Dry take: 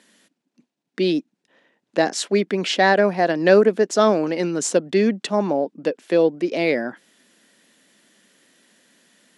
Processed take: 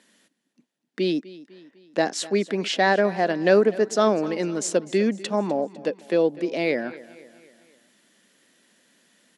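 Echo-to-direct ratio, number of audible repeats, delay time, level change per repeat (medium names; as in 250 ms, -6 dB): -17.5 dB, 3, 251 ms, -6.0 dB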